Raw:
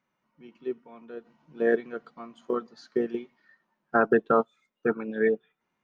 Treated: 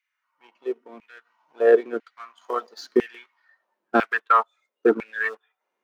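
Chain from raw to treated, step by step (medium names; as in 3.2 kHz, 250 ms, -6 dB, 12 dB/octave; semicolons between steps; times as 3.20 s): 2.41–3.08 s: treble shelf 2.6 kHz +10.5 dB; waveshaping leveller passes 1; LFO high-pass saw down 1 Hz 260–2400 Hz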